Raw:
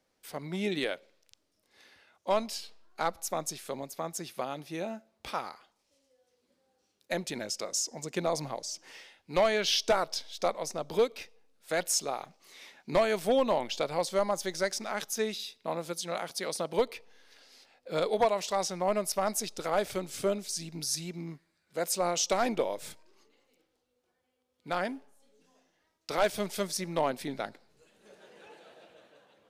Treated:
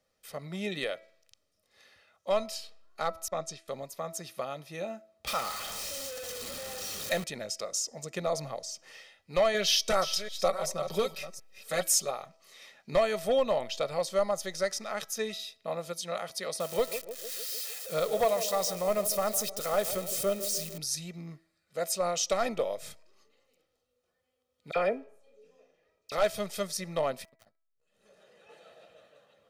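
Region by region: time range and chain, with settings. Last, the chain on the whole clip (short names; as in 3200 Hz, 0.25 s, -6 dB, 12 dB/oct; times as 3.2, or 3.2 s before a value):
3.28–3.68 LPF 6500 Hz + expander -42 dBFS
5.27–7.24 zero-crossing step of -35 dBFS + high shelf 2600 Hz +7 dB
9.54–12.11 reverse delay 0.371 s, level -11 dB + high shelf 7600 Hz +7 dB + comb 5.3 ms, depth 68%
16.6–20.78 switching spikes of -28.5 dBFS + narrowing echo 0.152 s, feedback 71%, band-pass 380 Hz, level -10 dB
24.71–26.12 bell 13000 Hz -7 dB 2.3 oct + small resonant body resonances 440/2400 Hz, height 14 dB, ringing for 25 ms + dispersion lows, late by 48 ms, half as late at 2000 Hz
27.24–28.49 compressor 2.5:1, threshold -56 dBFS + wrapped overs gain 45 dB + core saturation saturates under 490 Hz
whole clip: notch 740 Hz, Q 14; comb 1.6 ms, depth 54%; de-hum 327.2 Hz, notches 7; gain -2 dB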